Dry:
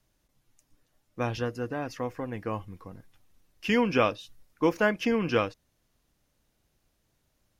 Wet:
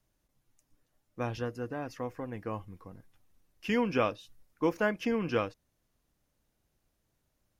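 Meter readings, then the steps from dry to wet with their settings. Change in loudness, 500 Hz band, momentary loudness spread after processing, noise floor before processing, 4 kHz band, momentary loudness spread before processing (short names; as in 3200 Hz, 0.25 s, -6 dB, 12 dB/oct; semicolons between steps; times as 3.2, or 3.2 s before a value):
-4.5 dB, -4.0 dB, 13 LU, -74 dBFS, -7.0 dB, 12 LU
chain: bell 3700 Hz -3 dB 1.9 oct; gain -4 dB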